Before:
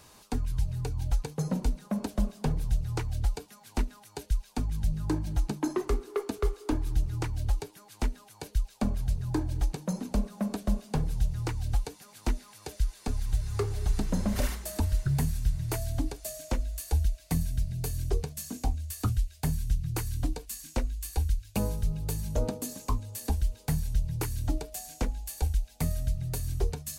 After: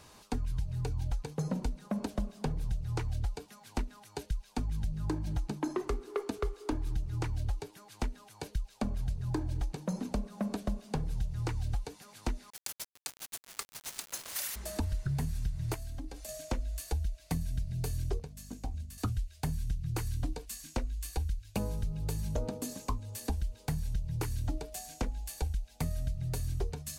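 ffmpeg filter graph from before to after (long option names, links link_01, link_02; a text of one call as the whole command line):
ffmpeg -i in.wav -filter_complex "[0:a]asettb=1/sr,asplit=3[link_01][link_02][link_03];[link_01]atrim=end=12.504[link_04];[link_02]atrim=start=12.5:end=14.56,asetpts=PTS-STARTPTS,afade=type=in:duration=0.004:curve=qsin,afade=type=out:start_time=2.056:duration=0.004:curve=qsin,highpass=1100,aemphasis=mode=production:type=riaa,aeval=exprs='val(0)*gte(abs(val(0)),0.0266)':channel_layout=same[link_05];[link_03]atrim=start=14.556[link_06];[link_04][link_05]acrossfade=duration=0.004:curve1=hsin:curve2=qsin[link_07];[link_07][link_06]acrossfade=duration=0.004:curve1=qsin:curve2=hsin,asettb=1/sr,asplit=3[link_08][link_09][link_10];[link_08]atrim=end=15.744[link_11];[link_09]atrim=start=15.74:end=16.29,asetpts=PTS-STARTPTS,afade=type=in:duration=0.004:curve=qsin,afade=type=out:start_time=0.546:duration=0.004:curve=qsin,aecho=1:1:3.8:0.53,atrim=end_sample=24255,acompressor=threshold=-37dB:ratio=6:attack=3.2:release=140:knee=1:detection=peak[link_12];[link_10]atrim=start=16.286[link_13];[link_11][link_12]acrossfade=duration=0.004:curve1=hsin:curve2=qsin[link_14];[link_14][link_13]acrossfade=duration=0.004:curve1=qsin:curve2=hsin,asettb=1/sr,asplit=3[link_15][link_16][link_17];[link_15]atrim=end=18.194[link_18];[link_16]atrim=start=18.19:end=18.98,asetpts=PTS-STARTPTS,afade=type=in:duration=0.004:curve=qsin,afade=type=out:start_time=0.786:duration=0.004:curve=qsin,agate=range=-9dB:threshold=-35dB:ratio=16:release=100:detection=peak,acompressor=threshold=-33dB:ratio=5:attack=3.2:release=140:knee=1:detection=peak,aeval=exprs='val(0)+0.00355*(sin(2*PI*50*n/s)+sin(2*PI*2*50*n/s)/2+sin(2*PI*3*50*n/s)/3+sin(2*PI*4*50*n/s)/4+sin(2*PI*5*50*n/s)/5)':channel_layout=same[link_19];[link_17]atrim=start=18.976[link_20];[link_18][link_19]acrossfade=duration=0.004:curve1=hsin:curve2=qsin[link_21];[link_21][link_20]acrossfade=duration=0.004:curve1=qsin:curve2=hsin,acompressor=threshold=-29dB:ratio=6,highshelf=frequency=9100:gain=-7.5" out.wav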